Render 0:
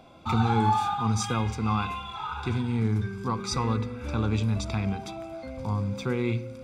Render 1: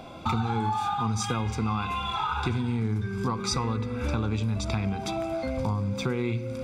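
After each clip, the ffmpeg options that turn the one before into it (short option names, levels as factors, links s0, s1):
-af "acompressor=threshold=0.02:ratio=6,volume=2.82"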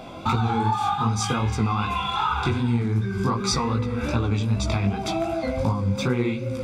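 -af "flanger=delay=15.5:depth=6.2:speed=2.6,volume=2.37"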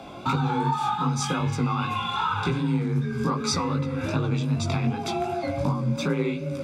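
-af "afreqshift=31,volume=0.794"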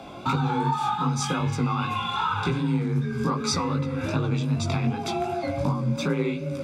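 -af anull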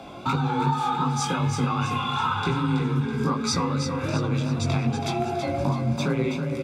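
-af "aecho=1:1:327|654|981|1308|1635:0.422|0.19|0.0854|0.0384|0.0173"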